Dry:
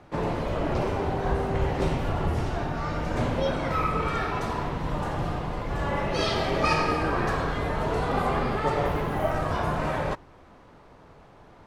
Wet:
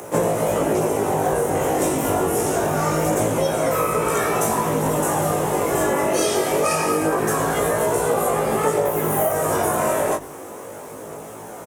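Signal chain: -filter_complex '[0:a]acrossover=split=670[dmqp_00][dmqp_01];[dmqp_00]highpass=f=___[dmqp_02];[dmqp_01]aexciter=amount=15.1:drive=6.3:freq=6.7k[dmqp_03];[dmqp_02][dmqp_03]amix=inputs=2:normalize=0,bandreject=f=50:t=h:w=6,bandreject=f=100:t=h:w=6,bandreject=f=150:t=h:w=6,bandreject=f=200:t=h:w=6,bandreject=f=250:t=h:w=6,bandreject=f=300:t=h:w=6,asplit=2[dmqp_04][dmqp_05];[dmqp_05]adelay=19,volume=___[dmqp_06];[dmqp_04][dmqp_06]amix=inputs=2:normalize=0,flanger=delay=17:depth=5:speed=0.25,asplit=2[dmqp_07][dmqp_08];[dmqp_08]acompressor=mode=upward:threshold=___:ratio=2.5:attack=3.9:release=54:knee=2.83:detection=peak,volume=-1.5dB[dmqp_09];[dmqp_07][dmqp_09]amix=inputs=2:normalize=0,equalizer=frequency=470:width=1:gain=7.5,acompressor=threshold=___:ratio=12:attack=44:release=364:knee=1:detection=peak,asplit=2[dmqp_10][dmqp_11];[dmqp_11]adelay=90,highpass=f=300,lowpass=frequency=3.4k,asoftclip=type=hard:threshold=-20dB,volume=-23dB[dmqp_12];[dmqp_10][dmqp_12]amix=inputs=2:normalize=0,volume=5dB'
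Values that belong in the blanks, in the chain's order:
130, -4dB, -38dB, -23dB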